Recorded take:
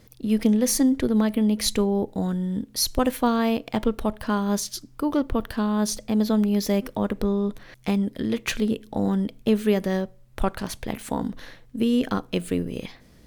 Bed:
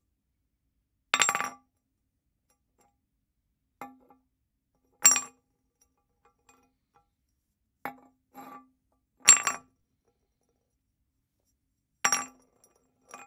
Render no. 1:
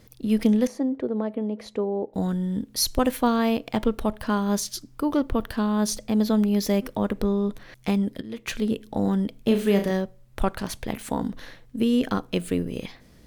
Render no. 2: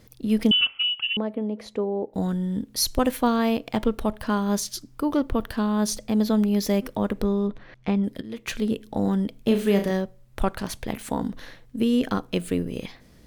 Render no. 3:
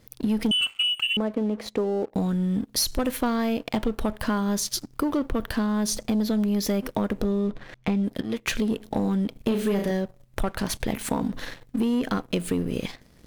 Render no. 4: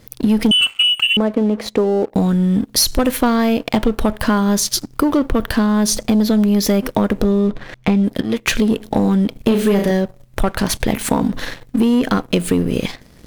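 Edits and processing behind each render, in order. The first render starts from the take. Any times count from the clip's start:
0.67–2.14 s: band-pass filter 540 Hz, Q 1.1; 8.21–8.75 s: fade in, from -16.5 dB; 9.40–9.91 s: flutter echo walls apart 6 m, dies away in 0.35 s
0.51–1.17 s: frequency inversion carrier 3.2 kHz; 7.47–8.04 s: Bessel low-pass 2.6 kHz
waveshaping leveller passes 2; compression 4:1, threshold -23 dBFS, peak gain reduction 9.5 dB
trim +9.5 dB; peak limiter -3 dBFS, peak gain reduction 2.5 dB

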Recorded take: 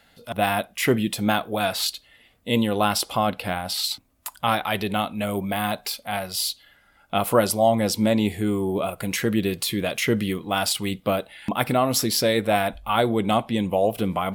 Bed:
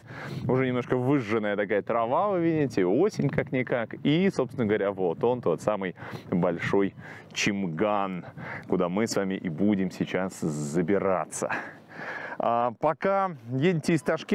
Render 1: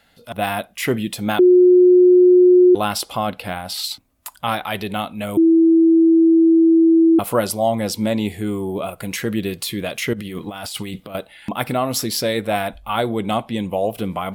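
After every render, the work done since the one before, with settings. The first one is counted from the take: 1.39–2.75 s: bleep 361 Hz -7 dBFS; 5.37–7.19 s: bleep 328 Hz -9 dBFS; 10.13–11.15 s: compressor with a negative ratio -30 dBFS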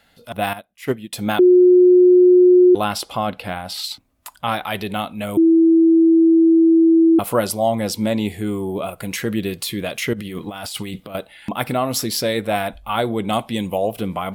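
0.53–1.13 s: upward expansion 2.5:1, over -29 dBFS; 2.84–4.55 s: treble shelf 6.7 kHz -5.5 dB; 13.33–13.78 s: treble shelf 3.9 kHz +8.5 dB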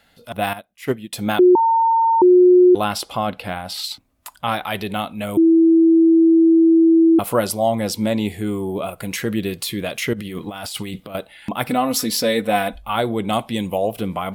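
1.55–2.22 s: bleep 909 Hz -12.5 dBFS; 11.69–12.82 s: comb 4 ms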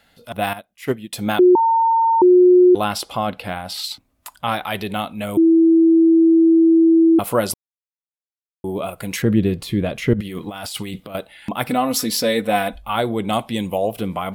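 7.54–8.64 s: mute; 9.22–10.21 s: tilt EQ -3 dB/octave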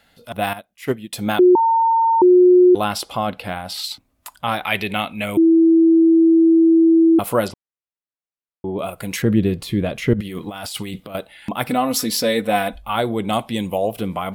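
4.64–6.02 s: peaking EQ 2.3 kHz +10 dB; 7.48–8.79 s: low-pass 2.8 kHz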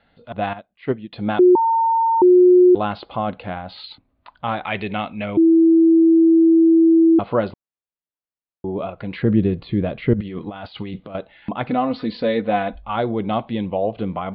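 steep low-pass 4.5 kHz 96 dB/octave; treble shelf 2.3 kHz -11.5 dB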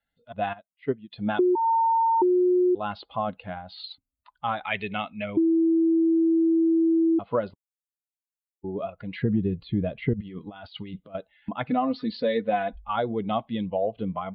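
expander on every frequency bin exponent 1.5; compression 6:1, threshold -20 dBFS, peak gain reduction 10 dB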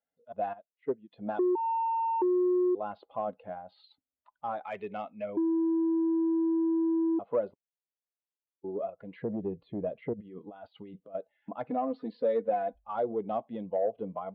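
saturation -18.5 dBFS, distortion -19 dB; band-pass filter 510 Hz, Q 1.4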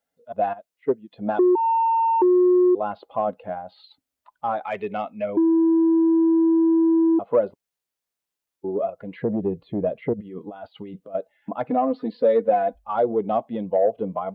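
trim +9.5 dB

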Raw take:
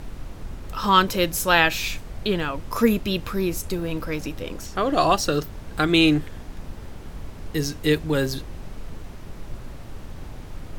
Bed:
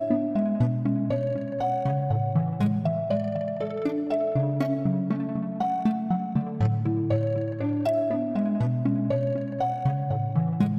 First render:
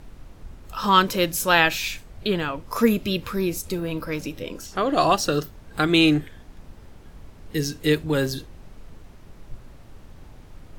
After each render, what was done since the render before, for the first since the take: noise print and reduce 8 dB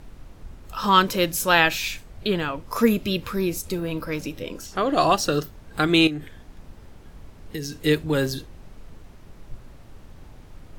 6.07–7.73 s: compression 12:1, threshold -26 dBFS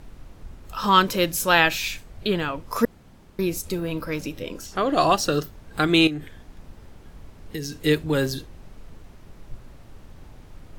2.85–3.39 s: room tone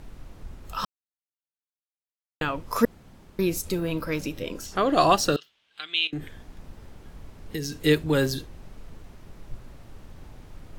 0.85–2.41 s: mute; 5.36–6.13 s: band-pass filter 3.1 kHz, Q 3.8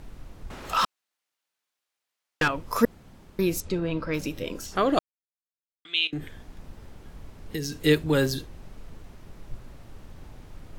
0.50–2.48 s: overdrive pedal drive 22 dB, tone 4.2 kHz, clips at -14.5 dBFS; 3.60–4.14 s: distance through air 120 m; 4.99–5.85 s: mute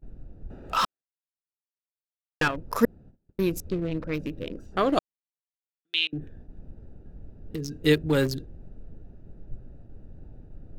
local Wiener filter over 41 samples; gate -46 dBFS, range -25 dB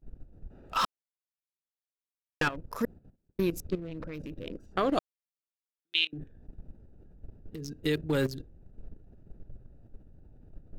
level held to a coarse grid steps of 13 dB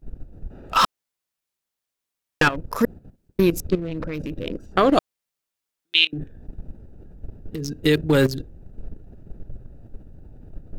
trim +10.5 dB; peak limiter -3 dBFS, peak gain reduction 1 dB

